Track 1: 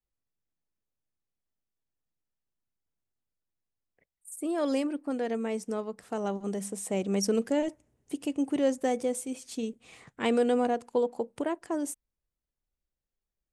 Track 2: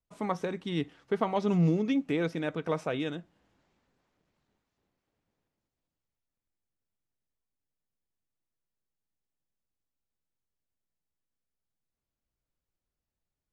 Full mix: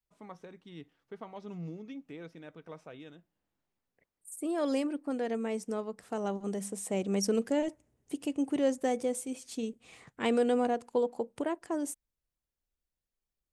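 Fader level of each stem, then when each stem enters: -2.0 dB, -16.0 dB; 0.00 s, 0.00 s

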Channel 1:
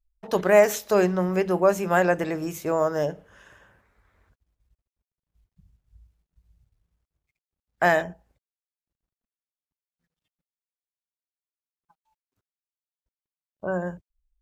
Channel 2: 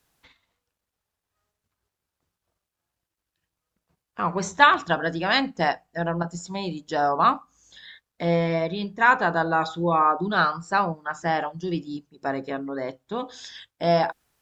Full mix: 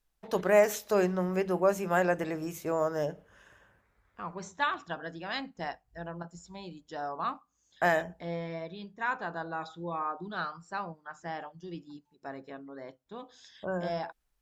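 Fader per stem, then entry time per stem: -6.0 dB, -14.0 dB; 0.00 s, 0.00 s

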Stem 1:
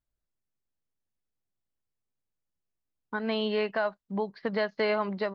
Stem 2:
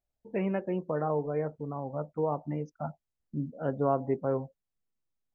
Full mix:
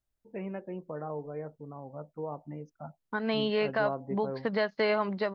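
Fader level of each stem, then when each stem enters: 0.0 dB, -7.5 dB; 0.00 s, 0.00 s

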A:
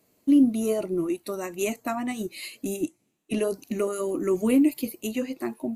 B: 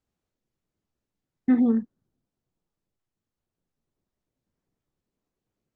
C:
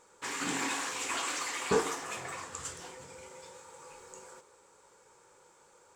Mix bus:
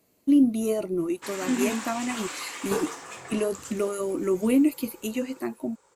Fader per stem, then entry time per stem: -0.5 dB, -6.5 dB, -1.5 dB; 0.00 s, 0.00 s, 1.00 s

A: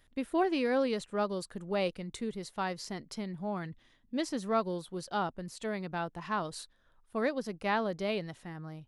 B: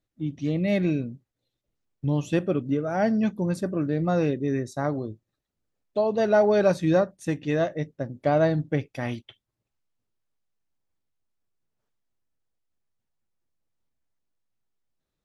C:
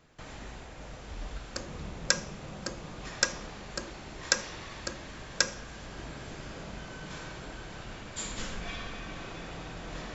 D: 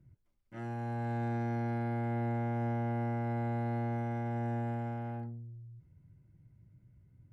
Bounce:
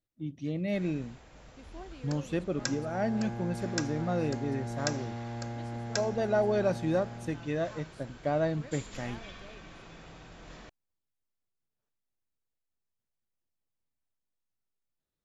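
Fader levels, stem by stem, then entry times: -19.0 dB, -7.5 dB, -8.5 dB, -4.5 dB; 1.40 s, 0.00 s, 0.55 s, 2.05 s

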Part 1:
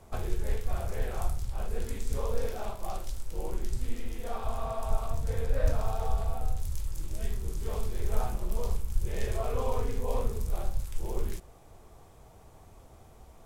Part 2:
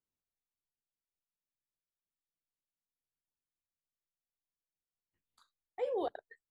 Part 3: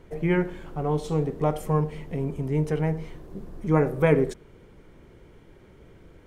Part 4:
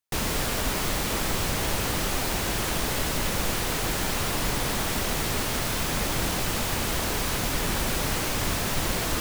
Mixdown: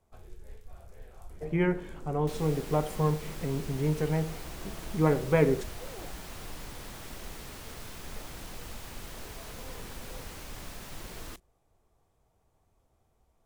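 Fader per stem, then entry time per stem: -17.5 dB, -13.5 dB, -3.5 dB, -17.5 dB; 0.00 s, 0.00 s, 1.30 s, 2.15 s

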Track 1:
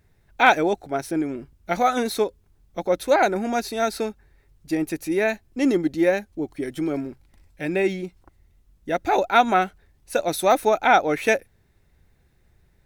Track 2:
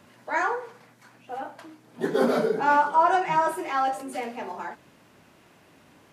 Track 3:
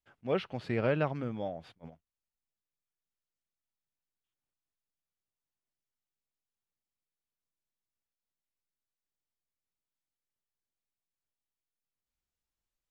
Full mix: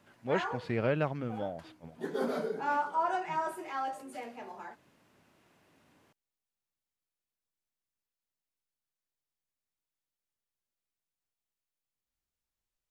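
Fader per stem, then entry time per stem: mute, -10.5 dB, -0.5 dB; mute, 0.00 s, 0.00 s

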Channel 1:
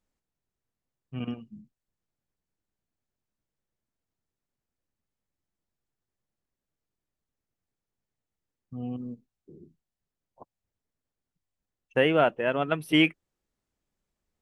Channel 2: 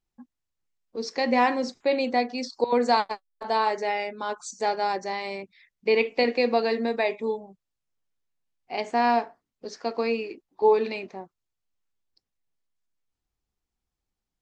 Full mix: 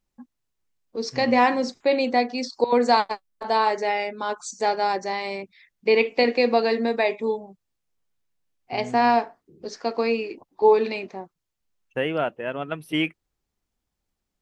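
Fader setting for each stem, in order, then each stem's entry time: -3.0 dB, +3.0 dB; 0.00 s, 0.00 s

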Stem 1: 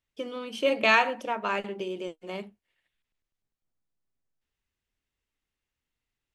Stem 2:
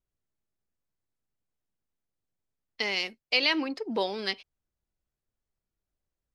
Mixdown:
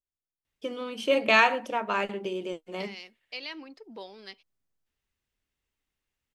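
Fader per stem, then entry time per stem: +1.0 dB, -14.0 dB; 0.45 s, 0.00 s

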